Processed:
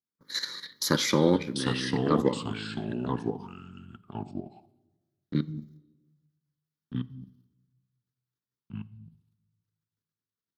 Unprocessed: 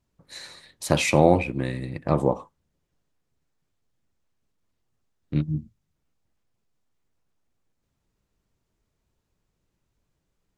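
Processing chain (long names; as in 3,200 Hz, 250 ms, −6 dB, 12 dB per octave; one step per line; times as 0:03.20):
phaser with its sweep stopped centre 2,600 Hz, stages 6
in parallel at +2.5 dB: downward compressor 8 to 1, threshold −37 dBFS, peak gain reduction 20 dB
on the sum: high-shelf EQ 6,000 Hz +7 dB
output level in coarse steps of 11 dB
high-pass filter 210 Hz 12 dB per octave
noise gate with hold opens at −52 dBFS
delay with pitch and tempo change per echo 586 ms, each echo −3 semitones, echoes 2, each echo −6 dB
on a send at −18 dB: convolution reverb RT60 1.2 s, pre-delay 4 ms
on the sum: level +4 dB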